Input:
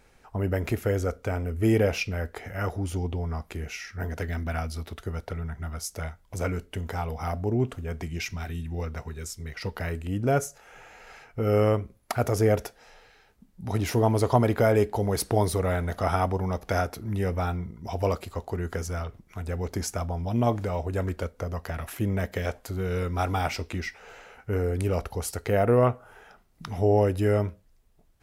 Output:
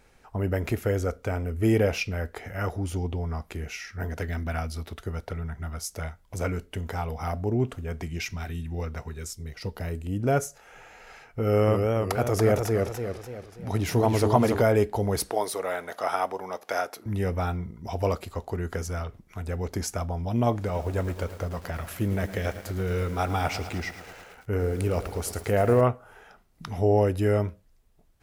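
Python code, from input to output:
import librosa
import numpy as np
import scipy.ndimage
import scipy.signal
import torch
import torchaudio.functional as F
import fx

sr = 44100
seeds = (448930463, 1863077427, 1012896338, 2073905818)

y = fx.peak_eq(x, sr, hz=1600.0, db=-7.5, octaves=2.0, at=(9.33, 10.2))
y = fx.echo_warbled(y, sr, ms=288, feedback_pct=45, rate_hz=2.8, cents=121, wet_db=-3.5, at=(11.39, 14.62))
y = fx.highpass(y, sr, hz=460.0, slope=12, at=(15.3, 17.06))
y = fx.echo_crushed(y, sr, ms=109, feedback_pct=80, bits=7, wet_db=-12.5, at=(20.54, 25.81))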